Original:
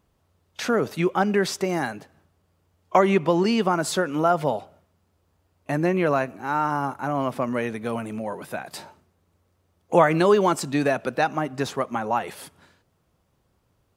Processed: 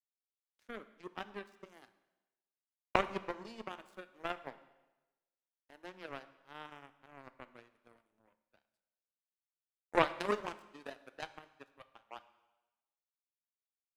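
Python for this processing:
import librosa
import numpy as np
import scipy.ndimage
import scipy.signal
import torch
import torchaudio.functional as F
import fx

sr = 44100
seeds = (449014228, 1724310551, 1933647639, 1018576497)

y = fx.ellip_highpass(x, sr, hz=fx.steps((0.0, 200.0), (11.78, 490.0)), order=4, stop_db=40)
y = fx.power_curve(y, sr, exponent=3.0)
y = fx.rev_plate(y, sr, seeds[0], rt60_s=1.1, hf_ratio=0.95, predelay_ms=0, drr_db=12.0)
y = F.gain(torch.from_numpy(y), -1.5).numpy()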